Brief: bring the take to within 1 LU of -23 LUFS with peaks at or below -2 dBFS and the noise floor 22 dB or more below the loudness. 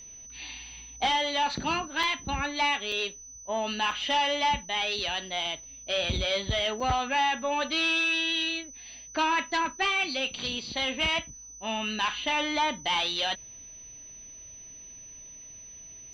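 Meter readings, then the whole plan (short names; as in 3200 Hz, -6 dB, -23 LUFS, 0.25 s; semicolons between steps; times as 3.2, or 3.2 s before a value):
dropouts 4; longest dropout 4.0 ms; steady tone 6000 Hz; tone level -44 dBFS; loudness -27.5 LUFS; peak -15.0 dBFS; loudness target -23.0 LUFS
-> interpolate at 2.03/2.92/3.91/6.8, 4 ms; notch 6000 Hz, Q 30; gain +4.5 dB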